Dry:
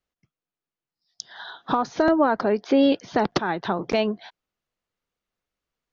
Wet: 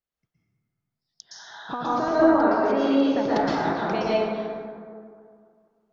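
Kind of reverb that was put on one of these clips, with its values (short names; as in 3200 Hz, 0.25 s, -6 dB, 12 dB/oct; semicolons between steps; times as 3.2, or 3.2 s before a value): plate-style reverb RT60 2.2 s, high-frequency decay 0.4×, pre-delay 0.105 s, DRR -8.5 dB; gain -9.5 dB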